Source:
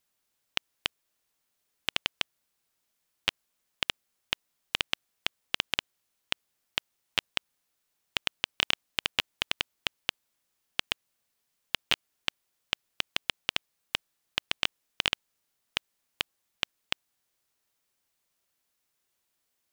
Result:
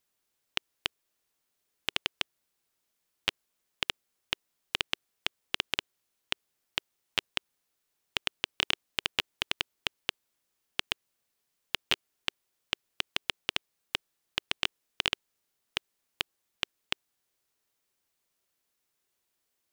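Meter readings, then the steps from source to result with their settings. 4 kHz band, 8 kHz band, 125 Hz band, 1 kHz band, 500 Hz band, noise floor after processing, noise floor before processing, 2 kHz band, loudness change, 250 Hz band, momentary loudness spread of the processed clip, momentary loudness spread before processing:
−1.5 dB, −1.5 dB, −1.5 dB, −1.5 dB, 0.0 dB, −81 dBFS, −79 dBFS, −1.5 dB, −1.5 dB, −0.5 dB, 6 LU, 6 LU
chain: parametric band 390 Hz +3.5 dB 0.58 octaves
level −1.5 dB

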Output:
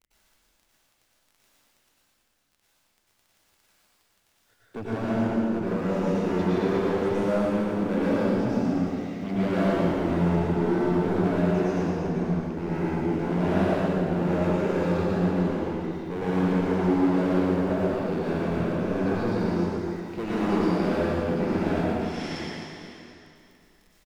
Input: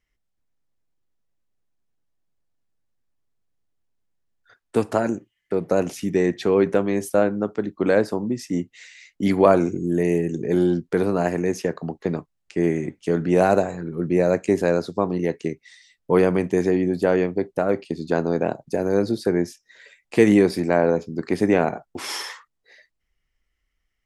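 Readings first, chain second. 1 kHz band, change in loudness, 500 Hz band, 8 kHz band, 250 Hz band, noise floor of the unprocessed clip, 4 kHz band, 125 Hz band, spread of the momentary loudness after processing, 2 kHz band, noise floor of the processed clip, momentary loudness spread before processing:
−2.5 dB, −3.5 dB, −6.0 dB, below −10 dB, −1.5 dB, −76 dBFS, −3.5 dB, +1.0 dB, 7 LU, −4.0 dB, −69 dBFS, 10 LU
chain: low-pass filter 2,400 Hz 12 dB per octave
parametric band 1,100 Hz −14 dB 2.4 octaves
in parallel at −2 dB: brickwall limiter −16 dBFS, peak gain reduction 8 dB
on the sum: surface crackle 13 per second −39 dBFS
hard clipping −22 dBFS, distortion −6 dB
on a send: single-tap delay 115 ms −5 dB
on the sum: dense smooth reverb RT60 2.8 s, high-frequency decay 0.95×, pre-delay 85 ms, DRR −9.5 dB
level −8.5 dB

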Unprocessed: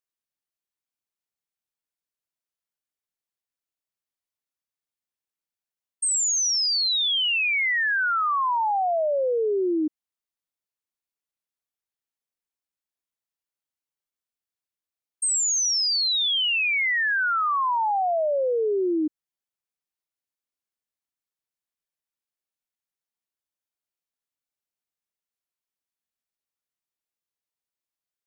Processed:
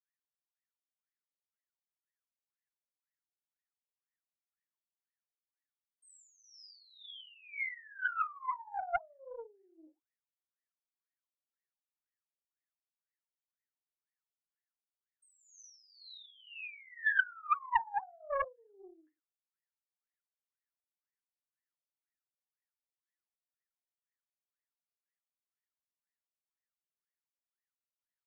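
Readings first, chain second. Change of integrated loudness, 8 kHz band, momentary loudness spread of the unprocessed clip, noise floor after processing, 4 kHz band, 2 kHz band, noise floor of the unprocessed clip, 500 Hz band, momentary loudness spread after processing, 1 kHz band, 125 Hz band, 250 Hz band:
−14.0 dB, −38.5 dB, 4 LU, below −85 dBFS, −31.0 dB, −12.5 dB, below −85 dBFS, −21.0 dB, 22 LU, −12.5 dB, can't be measured, below −35 dB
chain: octave-band graphic EQ 250/500/2,000 Hz −10/−3/+11 dB
brickwall limiter −19 dBFS, peak gain reduction 9.5 dB
reverb whose tail is shaped and stops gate 140 ms falling, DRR 1.5 dB
LFO wah 2 Hz 540–1,900 Hz, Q 22
highs frequency-modulated by the lows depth 0.53 ms

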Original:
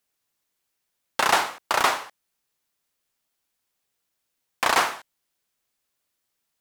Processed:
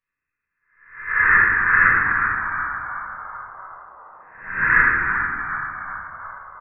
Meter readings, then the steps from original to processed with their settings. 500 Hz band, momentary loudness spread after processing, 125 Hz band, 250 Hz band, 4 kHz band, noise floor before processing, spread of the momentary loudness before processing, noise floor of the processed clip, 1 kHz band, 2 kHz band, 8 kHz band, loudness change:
−8.5 dB, 20 LU, +15.5 dB, +4.0 dB, below −35 dB, −79 dBFS, 11 LU, −83 dBFS, +2.5 dB, +14.0 dB, below −40 dB, +5.5 dB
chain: peak hold with a rise ahead of every peak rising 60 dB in 0.63 s
phaser with its sweep stopped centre 790 Hz, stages 4
echo with shifted repeats 372 ms, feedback 58%, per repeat +96 Hz, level −6.5 dB
voice inversion scrambler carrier 2,600 Hz
rectangular room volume 750 cubic metres, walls mixed, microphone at 5.7 metres
level −4.5 dB

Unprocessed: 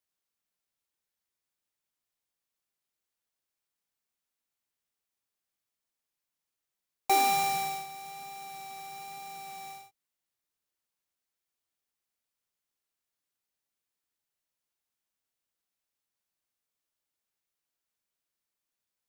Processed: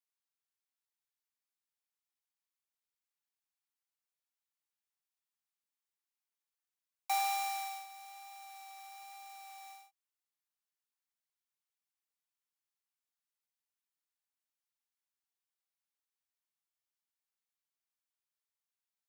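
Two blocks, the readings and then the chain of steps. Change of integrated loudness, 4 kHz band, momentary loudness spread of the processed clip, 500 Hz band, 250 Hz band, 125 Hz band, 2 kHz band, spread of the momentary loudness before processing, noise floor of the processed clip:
−7.5 dB, −7.5 dB, 18 LU, below −25 dB, below −40 dB, below −40 dB, −7.5 dB, 17 LU, below −85 dBFS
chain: Butterworth high-pass 720 Hz 72 dB per octave
level −7.5 dB

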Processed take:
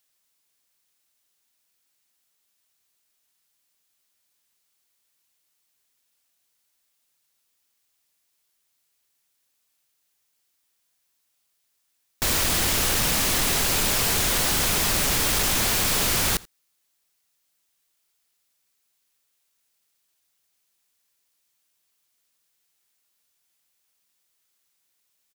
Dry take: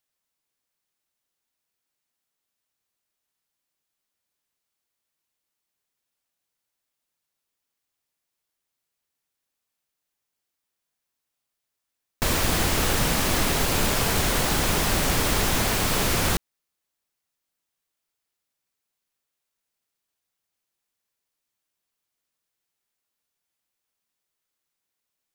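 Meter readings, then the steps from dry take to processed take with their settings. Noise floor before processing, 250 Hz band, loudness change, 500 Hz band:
−83 dBFS, −4.0 dB, +2.0 dB, −3.5 dB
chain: high-shelf EQ 2,000 Hz +8 dB
soft clipping −23 dBFS, distortion −8 dB
on a send: single-tap delay 84 ms −23.5 dB
on the sum: level +3 dB

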